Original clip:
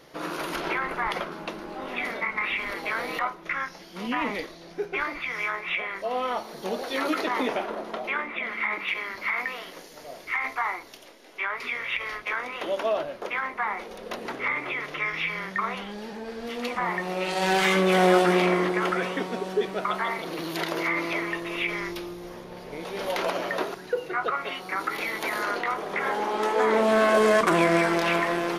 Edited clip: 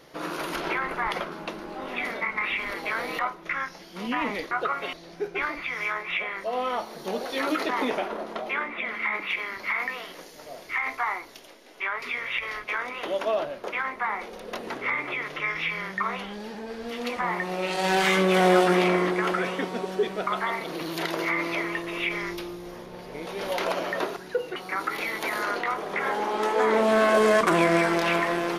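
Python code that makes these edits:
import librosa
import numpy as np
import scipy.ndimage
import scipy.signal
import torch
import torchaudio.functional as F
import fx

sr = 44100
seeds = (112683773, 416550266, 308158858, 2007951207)

y = fx.edit(x, sr, fx.move(start_s=24.14, length_s=0.42, to_s=4.51), tone=tone)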